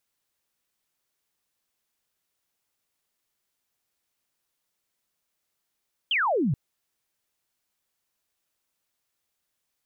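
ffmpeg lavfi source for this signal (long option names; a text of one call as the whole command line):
ffmpeg -f lavfi -i "aevalsrc='0.0891*clip(t/0.002,0,1)*clip((0.43-t)/0.002,0,1)*sin(2*PI*3300*0.43/log(120/3300)*(exp(log(120/3300)*t/0.43)-1))':duration=0.43:sample_rate=44100" out.wav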